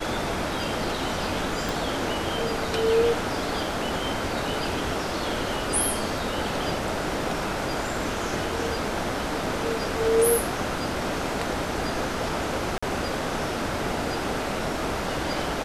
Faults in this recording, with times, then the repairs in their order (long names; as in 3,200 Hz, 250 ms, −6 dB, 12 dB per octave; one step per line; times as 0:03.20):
0:01.69: click
0:12.78–0:12.82: drop-out 45 ms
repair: click removal
repair the gap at 0:12.78, 45 ms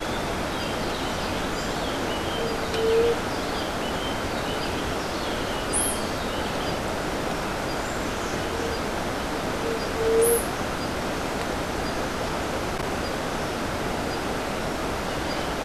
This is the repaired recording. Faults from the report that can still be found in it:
0:01.69: click